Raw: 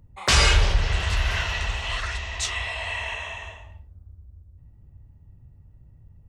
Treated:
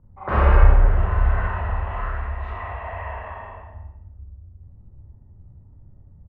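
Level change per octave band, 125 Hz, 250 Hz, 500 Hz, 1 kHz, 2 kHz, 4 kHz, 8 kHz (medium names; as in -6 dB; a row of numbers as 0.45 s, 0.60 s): +5.5 dB, +4.5 dB, +4.5 dB, +4.0 dB, -6.0 dB, -24.5 dB, under -40 dB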